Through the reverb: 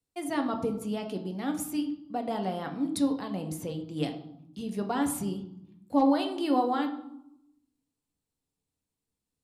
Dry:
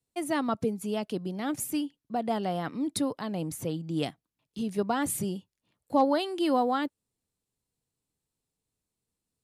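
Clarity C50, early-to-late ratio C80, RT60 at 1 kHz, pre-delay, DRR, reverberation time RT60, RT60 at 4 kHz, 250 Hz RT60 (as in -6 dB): 10.0 dB, 12.5 dB, 0.75 s, 4 ms, 4.0 dB, 0.75 s, 0.55 s, 1.2 s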